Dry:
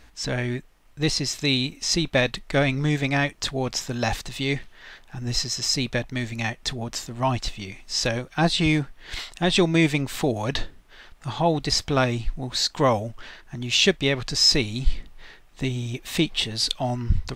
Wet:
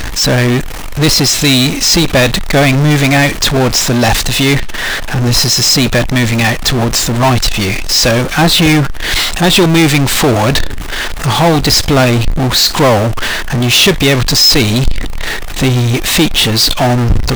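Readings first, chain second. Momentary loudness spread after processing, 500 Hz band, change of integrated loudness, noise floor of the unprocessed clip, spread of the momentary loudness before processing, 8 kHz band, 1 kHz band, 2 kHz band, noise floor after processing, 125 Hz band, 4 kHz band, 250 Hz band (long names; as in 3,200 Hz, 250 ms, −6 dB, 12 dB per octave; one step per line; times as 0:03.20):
8 LU, +13.0 dB, +14.0 dB, −52 dBFS, 12 LU, +16.5 dB, +14.0 dB, +14.5 dB, −18 dBFS, +15.0 dB, +14.0 dB, +14.0 dB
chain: power curve on the samples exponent 0.35
level +3.5 dB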